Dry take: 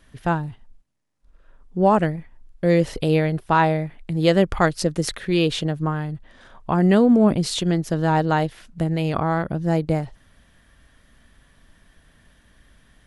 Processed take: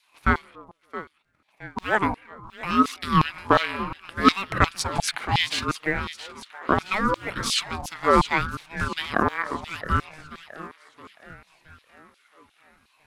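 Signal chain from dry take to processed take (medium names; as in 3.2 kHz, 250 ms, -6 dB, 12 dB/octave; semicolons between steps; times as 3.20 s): waveshaping leveller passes 1; two-band feedback delay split 720 Hz, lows 140 ms, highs 669 ms, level -13 dB; LFO high-pass saw down 2.8 Hz 410–3300 Hz; ring modulator with a swept carrier 560 Hz, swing 40%, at 0.69 Hz; trim -1 dB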